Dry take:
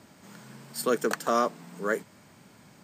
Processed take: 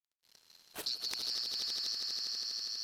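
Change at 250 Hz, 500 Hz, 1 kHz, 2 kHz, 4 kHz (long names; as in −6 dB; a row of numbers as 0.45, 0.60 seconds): −26.0, −28.5, −26.0, −16.5, +11.0 decibels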